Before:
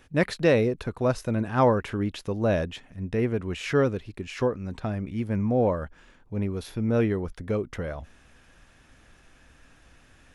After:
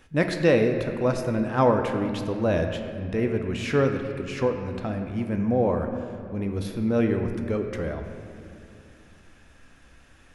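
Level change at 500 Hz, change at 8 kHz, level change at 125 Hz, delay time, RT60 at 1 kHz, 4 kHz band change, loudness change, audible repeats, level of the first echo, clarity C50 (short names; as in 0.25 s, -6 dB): +1.5 dB, +0.5 dB, 0.0 dB, none, 2.4 s, +1.0 dB, +1.5 dB, none, none, 6.0 dB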